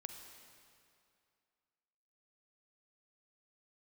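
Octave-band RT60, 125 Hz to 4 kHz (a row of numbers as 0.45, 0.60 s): 2.3, 2.4, 2.4, 2.5, 2.3, 2.1 s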